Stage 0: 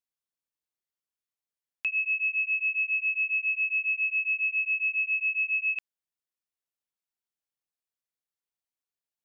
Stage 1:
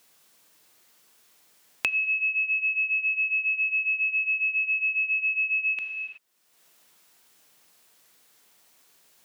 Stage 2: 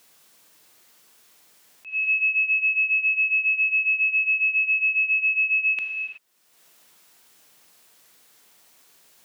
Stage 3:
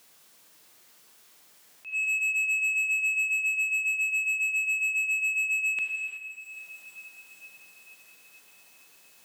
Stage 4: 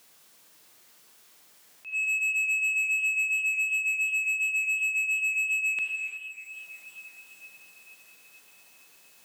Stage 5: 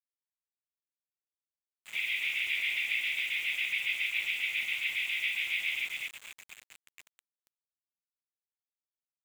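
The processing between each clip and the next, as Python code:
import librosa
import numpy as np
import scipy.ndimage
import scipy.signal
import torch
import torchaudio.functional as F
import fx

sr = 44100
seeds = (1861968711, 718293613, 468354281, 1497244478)

y1 = fx.rev_gated(x, sr, seeds[0], gate_ms=400, shape='falling', drr_db=7.0)
y1 = fx.band_squash(y1, sr, depth_pct=100)
y1 = F.gain(torch.from_numpy(y1), 1.5).numpy()
y2 = fx.auto_swell(y1, sr, attack_ms=216.0)
y2 = F.gain(torch.from_numpy(y2), 4.0).numpy()
y3 = 10.0 ** (-23.0 / 20.0) * np.tanh(y2 / 10.0 ** (-23.0 / 20.0))
y3 = fx.echo_diffused(y3, sr, ms=461, feedback_pct=65, wet_db=-13.0)
y3 = F.gain(torch.from_numpy(y3), -1.0).numpy()
y4 = fx.echo_warbled(y3, sr, ms=346, feedback_pct=43, rate_hz=2.8, cents=131, wet_db=-24.0)
y5 = fx.brickwall_bandpass(y4, sr, low_hz=1800.0, high_hz=5600.0)
y5 = fx.noise_vocoder(y5, sr, seeds[1], bands=16)
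y5 = np.where(np.abs(y5) >= 10.0 ** (-36.5 / 20.0), y5, 0.0)
y5 = F.gain(torch.from_numpy(y5), -5.0).numpy()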